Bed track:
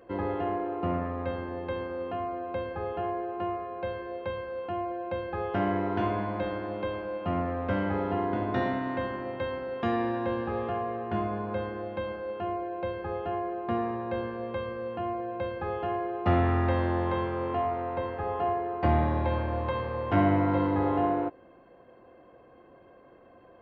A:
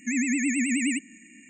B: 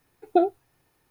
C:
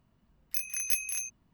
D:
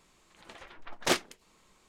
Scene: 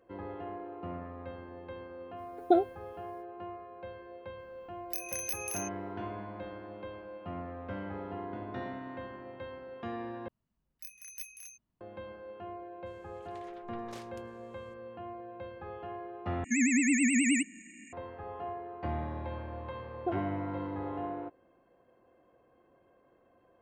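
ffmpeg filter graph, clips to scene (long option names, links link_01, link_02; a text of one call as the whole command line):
ffmpeg -i bed.wav -i cue0.wav -i cue1.wav -i cue2.wav -i cue3.wav -filter_complex "[2:a]asplit=2[link_01][link_02];[3:a]asplit=2[link_03][link_04];[0:a]volume=-11dB[link_05];[link_01]asuperstop=centerf=2600:order=4:qfactor=6.9[link_06];[link_03]acompressor=threshold=-40dB:ratio=3:attack=95:release=92:knee=1:detection=rms[link_07];[4:a]acompressor=threshold=-37dB:ratio=6:attack=3.2:release=140:knee=1:detection=peak[link_08];[link_02]lowpass=1400[link_09];[link_05]asplit=3[link_10][link_11][link_12];[link_10]atrim=end=10.284[link_13];[link_04]atrim=end=1.53,asetpts=PTS-STARTPTS,volume=-15dB[link_14];[link_11]atrim=start=11.806:end=16.444[link_15];[1:a]atrim=end=1.49,asetpts=PTS-STARTPTS,volume=-1dB[link_16];[link_12]atrim=start=17.926[link_17];[link_06]atrim=end=1.1,asetpts=PTS-STARTPTS,volume=-4dB,afade=type=in:duration=0.05,afade=type=out:start_time=1.05:duration=0.05,adelay=2150[link_18];[link_07]atrim=end=1.53,asetpts=PTS-STARTPTS,volume=-0.5dB,afade=type=in:duration=0.004:curve=hsin,afade=type=out:start_time=1.526:duration=0.004:curve=hsin,adelay=4390[link_19];[link_08]atrim=end=1.88,asetpts=PTS-STARTPTS,volume=-9dB,afade=type=in:duration=0.004:curve=hsin,afade=type=out:start_time=1.876:duration=0.004:curve=hsin,adelay=12860[link_20];[link_09]atrim=end=1.1,asetpts=PTS-STARTPTS,volume=-14dB,afade=type=in:duration=0.004:curve=hsin,afade=type=out:start_time=1.096:duration=0.004:curve=hsin,adelay=19710[link_21];[link_13][link_14]acrossfade=duration=0.004:curve1=hsin:curve2=hsin[link_22];[link_22][link_15]acrossfade=duration=0.004:curve1=hsin:curve2=hsin[link_23];[link_23][link_16]acrossfade=duration=0.004:curve1=hsin:curve2=hsin[link_24];[link_24][link_17]acrossfade=duration=0.004:curve1=hsin:curve2=hsin[link_25];[link_25][link_18][link_19][link_20][link_21]amix=inputs=5:normalize=0" out.wav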